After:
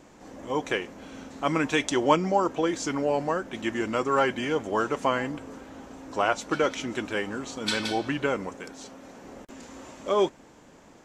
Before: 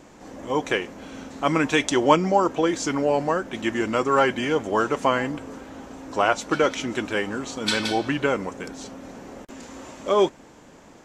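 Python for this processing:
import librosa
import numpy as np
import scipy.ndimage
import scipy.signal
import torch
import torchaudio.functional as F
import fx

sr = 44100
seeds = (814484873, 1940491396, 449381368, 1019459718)

y = fx.low_shelf(x, sr, hz=240.0, db=-7.5, at=(8.56, 9.24))
y = y * librosa.db_to_amplitude(-4.0)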